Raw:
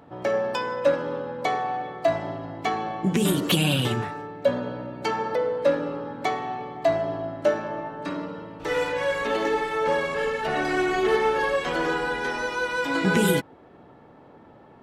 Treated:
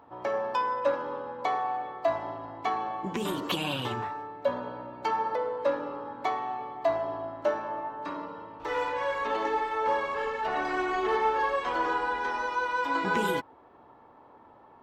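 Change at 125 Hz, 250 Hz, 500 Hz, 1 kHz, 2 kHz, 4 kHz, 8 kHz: −13.5 dB, −9.5 dB, −6.5 dB, 0.0 dB, −5.5 dB, −7.5 dB, below −10 dB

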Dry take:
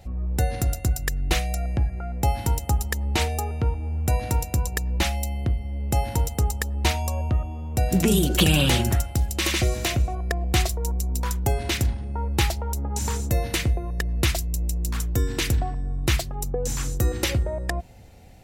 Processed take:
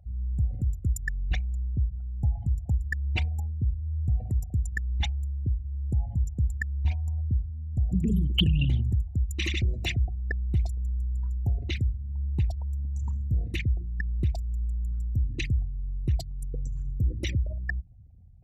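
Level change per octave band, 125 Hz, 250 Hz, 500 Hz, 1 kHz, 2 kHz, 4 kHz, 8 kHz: −2.5, −7.5, −18.0, −21.5, −7.0, −8.0, −19.0 decibels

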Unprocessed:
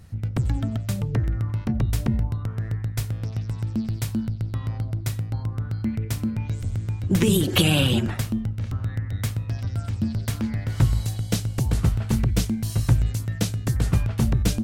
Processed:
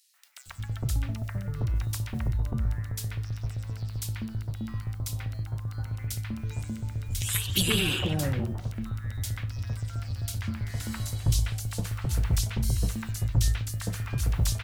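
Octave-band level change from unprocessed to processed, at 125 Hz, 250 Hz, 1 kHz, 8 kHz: −6.0, −10.0, −5.5, 0.0 decibels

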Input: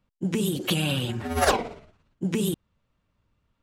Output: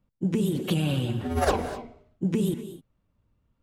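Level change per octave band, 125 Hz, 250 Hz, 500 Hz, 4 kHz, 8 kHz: +2.0, +1.0, −0.5, −7.0, −7.5 decibels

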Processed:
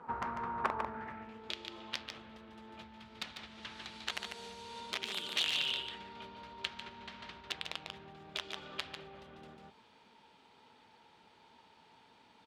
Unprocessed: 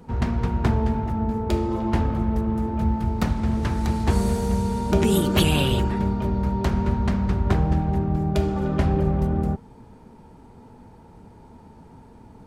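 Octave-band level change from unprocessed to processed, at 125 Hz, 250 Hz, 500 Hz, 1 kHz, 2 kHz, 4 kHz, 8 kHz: −35.5, −29.0, −22.5, −12.5, −6.5, −3.5, −13.0 decibels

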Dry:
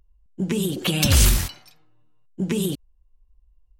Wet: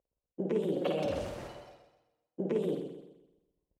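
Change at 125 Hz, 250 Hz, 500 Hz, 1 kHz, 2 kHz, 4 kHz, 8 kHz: −19.0, −10.5, −1.0, −6.5, −18.0, −23.0, −33.5 decibels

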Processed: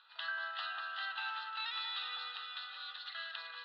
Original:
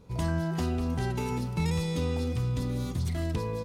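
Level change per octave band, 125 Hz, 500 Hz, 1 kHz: below −40 dB, −26.5 dB, −4.0 dB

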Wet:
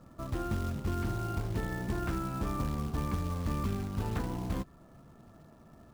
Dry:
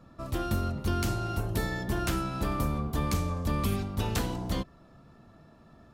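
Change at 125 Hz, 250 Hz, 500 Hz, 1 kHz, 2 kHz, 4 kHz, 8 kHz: −3.0, −3.0, −4.5, −4.5, −6.0, −10.0, −9.0 decibels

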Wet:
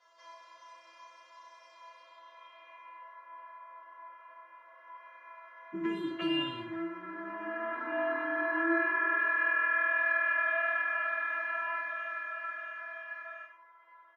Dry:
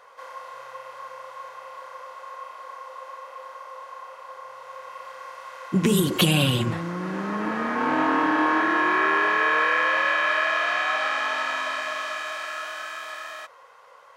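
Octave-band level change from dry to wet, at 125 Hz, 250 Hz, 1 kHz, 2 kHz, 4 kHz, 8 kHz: −27.5 dB, −11.0 dB, −12.0 dB, −5.5 dB, −15.5 dB, below −30 dB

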